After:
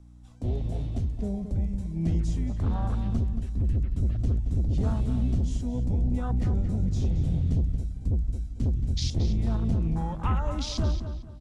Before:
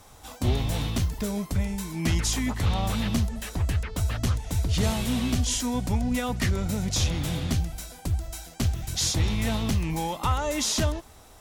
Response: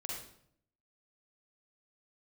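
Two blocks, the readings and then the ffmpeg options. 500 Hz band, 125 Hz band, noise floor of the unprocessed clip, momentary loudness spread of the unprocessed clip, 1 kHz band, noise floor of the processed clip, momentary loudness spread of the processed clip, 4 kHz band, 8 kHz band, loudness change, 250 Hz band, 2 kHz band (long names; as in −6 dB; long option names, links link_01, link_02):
−5.5 dB, +0.5 dB, −50 dBFS, 5 LU, −7.0 dB, −42 dBFS, 4 LU, −11.5 dB, −17.0 dB, −1.5 dB, −2.5 dB, −15.5 dB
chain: -filter_complex "[0:a]afwtdn=0.0355,lowpass=frequency=9900:width=0.5412,lowpass=frequency=9900:width=1.3066,asubboost=boost=5.5:cutoff=150,aeval=exprs='val(0)+0.00631*(sin(2*PI*60*n/s)+sin(2*PI*2*60*n/s)/2+sin(2*PI*3*60*n/s)/3+sin(2*PI*4*60*n/s)/4+sin(2*PI*5*60*n/s)/5)':channel_layout=same,acrossover=split=230|3400[link_01][link_02][link_03];[link_01]asoftclip=type=tanh:threshold=-17.5dB[link_04];[link_04][link_02][link_03]amix=inputs=3:normalize=0,flanger=delay=1.5:depth=4.6:regen=88:speed=0.26:shape=sinusoidal,asplit=2[link_05][link_06];[link_06]adelay=225,lowpass=frequency=4100:poles=1,volume=-9dB,asplit=2[link_07][link_08];[link_08]adelay=225,lowpass=frequency=4100:poles=1,volume=0.32,asplit=2[link_09][link_10];[link_10]adelay=225,lowpass=frequency=4100:poles=1,volume=0.32,asplit=2[link_11][link_12];[link_12]adelay=225,lowpass=frequency=4100:poles=1,volume=0.32[link_13];[link_07][link_09][link_11][link_13]amix=inputs=4:normalize=0[link_14];[link_05][link_14]amix=inputs=2:normalize=0"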